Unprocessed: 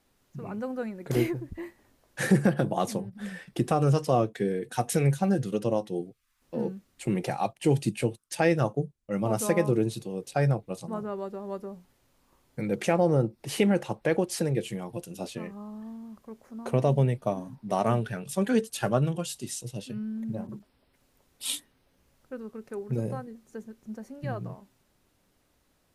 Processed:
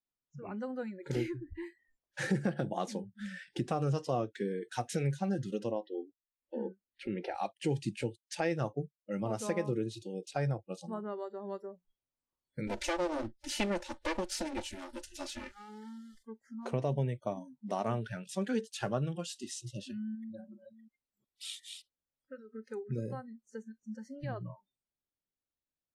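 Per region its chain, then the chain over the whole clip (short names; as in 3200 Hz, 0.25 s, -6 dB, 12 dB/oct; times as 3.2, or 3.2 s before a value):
5.71–7.35 running mean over 6 samples + bell 140 Hz -14 dB 0.5 oct
12.67–16.23 minimum comb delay 3.4 ms + high shelf 3100 Hz +9 dB
20.15–22.49 reverse delay 0.366 s, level -9 dB + low shelf 440 Hz -3.5 dB + compressor 1.5:1, threshold -44 dBFS
whole clip: compressor 1.5:1, threshold -41 dBFS; spectral noise reduction 30 dB; Chebyshev low-pass 6100 Hz, order 2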